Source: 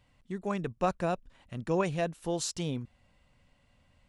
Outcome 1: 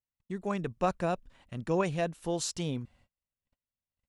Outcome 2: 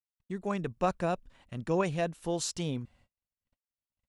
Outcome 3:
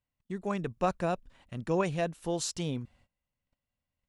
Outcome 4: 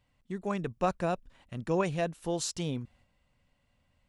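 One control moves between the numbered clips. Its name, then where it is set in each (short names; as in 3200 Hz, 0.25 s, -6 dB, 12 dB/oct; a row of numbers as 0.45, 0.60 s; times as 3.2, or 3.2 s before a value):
gate, range: -35, -54, -23, -6 dB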